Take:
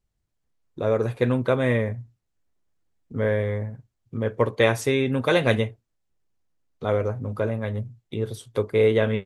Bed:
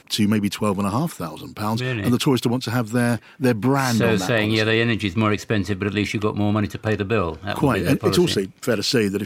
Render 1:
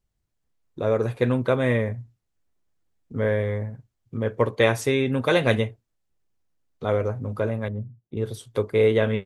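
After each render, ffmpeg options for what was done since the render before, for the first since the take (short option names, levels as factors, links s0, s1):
-filter_complex "[0:a]asettb=1/sr,asplit=3[s0][s1][s2];[s0]atrim=end=7.684[s3];[s1]atrim=start=7.68:end=8.17,asetpts=PTS-STARTPTS,afade=t=in:d=0.004:c=qsin,afade=t=out:st=0.486:d=0.004:c=qsin,bandpass=f=190:t=q:w=0.66[s4];[s2]atrim=start=8.166[s5];[s3][s4]acrossfade=d=0.004:c1=hsin:c2=qsin[s6];[s6][s5]acrossfade=d=0.004:c1=qsin:c2=hsin"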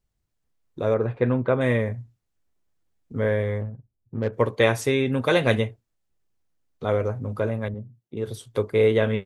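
-filter_complex "[0:a]asettb=1/sr,asplit=3[s0][s1][s2];[s0]atrim=end=0.944[s3];[s1]atrim=start=0.94:end=1.61,asetpts=PTS-STARTPTS,afade=t=in:d=0.004:c=qsin,afade=t=out:st=0.666:d=0.004:c=qsin,lowpass=2100[s4];[s2]atrim=start=1.606[s5];[s3][s4]acrossfade=d=0.004:c1=hsin:c2=qsin[s6];[s6][s5]acrossfade=d=0.004:c1=qsin:c2=hsin,asettb=1/sr,asplit=3[s7][s8][s9];[s7]atrim=end=3.614[s10];[s8]atrim=start=3.61:end=4.33,asetpts=PTS-STARTPTS,afade=t=in:d=0.004:c=qsin,afade=t=out:st=0.716:d=0.004:c=qsin,adynamicsmooth=sensitivity=2:basefreq=570[s11];[s9]atrim=start=4.326[s12];[s10][s11]acrossfade=d=0.004:c1=hsin:c2=qsin[s13];[s13][s12]acrossfade=d=0.004:c1=qsin:c2=hsin,asettb=1/sr,asplit=3[s14][s15][s16];[s14]atrim=end=7.744[s17];[s15]atrim=start=7.74:end=8.28,asetpts=PTS-STARTPTS,afade=t=in:d=0.004:c=qsin,afade=t=out:st=0.536:d=0.004:c=qsin,highpass=f=180:p=1[s18];[s16]atrim=start=8.276[s19];[s17][s18]acrossfade=d=0.004:c1=hsin:c2=qsin[s20];[s20][s19]acrossfade=d=0.004:c1=qsin:c2=hsin"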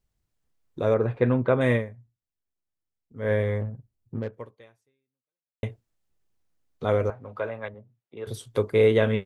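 -filter_complex "[0:a]asettb=1/sr,asplit=3[s0][s1][s2];[s0]atrim=end=7.104[s3];[s1]atrim=start=7.1:end=8.27,asetpts=PTS-STARTPTS,afade=t=in:d=0.004:c=qsin,afade=t=out:st=1.166:d=0.004:c=qsin,acrossover=split=500 3800:gain=0.178 1 0.112[s4][s5][s6];[s4][s5][s6]amix=inputs=3:normalize=0[s7];[s2]atrim=start=8.266[s8];[s3][s7]acrossfade=d=0.004:c1=hsin:c2=qsin[s9];[s9][s8]acrossfade=d=0.004:c1=qsin:c2=hsin,asplit=4[s10][s11][s12][s13];[s10]atrim=end=1.92,asetpts=PTS-STARTPTS,afade=t=out:st=1.75:d=0.17:c=qua:silence=0.188365[s14];[s11]atrim=start=1.92:end=3.14,asetpts=PTS-STARTPTS,volume=0.188[s15];[s12]atrim=start=3.14:end=5.63,asetpts=PTS-STARTPTS,afade=t=in:d=0.17:c=qua:silence=0.188365,afade=t=out:st=1.01:d=1.48:c=exp[s16];[s13]atrim=start=5.63,asetpts=PTS-STARTPTS,afade=t=in:d=0.004:c=hsin[s17];[s14][s15][s16][s17]concat=n=4:v=0:a=1"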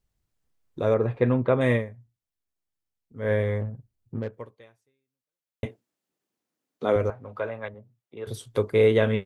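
-filter_complex "[0:a]asettb=1/sr,asplit=3[s0][s1][s2];[s0]atrim=end=0.954[s3];[s1]atrim=start=0.95:end=1.87,asetpts=PTS-STARTPTS,afade=t=in:d=0.004:c=qsin,afade=t=out:st=0.916:d=0.004:c=qsin,bandreject=f=1500:w=13[s4];[s2]atrim=start=1.866[s5];[s3][s4]acrossfade=d=0.004:c1=hsin:c2=qsin[s6];[s6][s5]acrossfade=d=0.004:c1=qsin:c2=hsin,asettb=1/sr,asplit=3[s7][s8][s9];[s7]atrim=end=5.654[s10];[s8]atrim=start=5.65:end=6.96,asetpts=PTS-STARTPTS,afade=t=in:d=0.004:c=qsin,afade=t=out:st=1.306:d=0.004:c=qsin,highpass=f=250:t=q:w=1.5[s11];[s9]atrim=start=6.956[s12];[s10][s11]acrossfade=d=0.004:c1=hsin:c2=qsin[s13];[s13][s12]acrossfade=d=0.004:c1=qsin:c2=hsin"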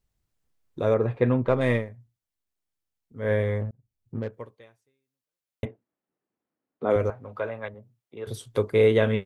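-filter_complex "[0:a]asettb=1/sr,asplit=3[s0][s1][s2];[s0]atrim=end=1.444[s3];[s1]atrim=start=1.44:end=1.9,asetpts=PTS-STARTPTS,afade=t=in:d=0.004:c=qsin,afade=t=out:st=0.456:d=0.004:c=qsin,aeval=exprs='if(lt(val(0),0),0.708*val(0),val(0))':c=same[s4];[s2]atrim=start=1.896[s5];[s3][s4]acrossfade=d=0.004:c1=hsin:c2=qsin[s6];[s6][s5]acrossfade=d=0.004:c1=qsin:c2=hsin,asplit=3[s7][s8][s9];[s7]afade=t=out:st=5.64:d=0.02[s10];[s8]lowpass=1700,afade=t=in:st=5.64:d=0.02,afade=t=out:st=6.89:d=0.02[s11];[s9]afade=t=in:st=6.89:d=0.02[s12];[s10][s11][s12]amix=inputs=3:normalize=0,asplit=2[s13][s14];[s13]atrim=end=3.71,asetpts=PTS-STARTPTS,afade=t=out:st=3.706:d=0.004:c=hsin[s15];[s14]atrim=start=3.71,asetpts=PTS-STARTPTS,afade=t=in:d=0.48[s16];[s15][s16]concat=n=2:v=0:a=1"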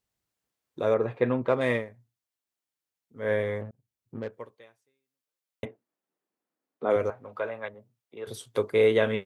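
-af "highpass=f=320:p=1"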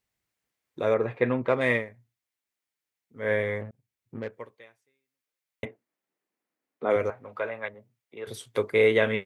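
-af "equalizer=f=2100:t=o:w=0.68:g=6.5"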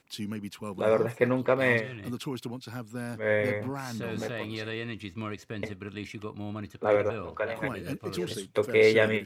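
-filter_complex "[1:a]volume=0.15[s0];[0:a][s0]amix=inputs=2:normalize=0"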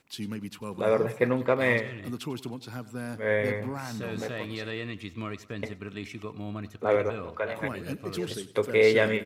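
-af "aecho=1:1:96|192|288|384:0.126|0.0554|0.0244|0.0107"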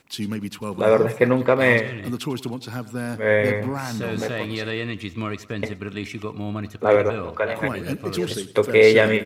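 -af "volume=2.37,alimiter=limit=0.708:level=0:latency=1"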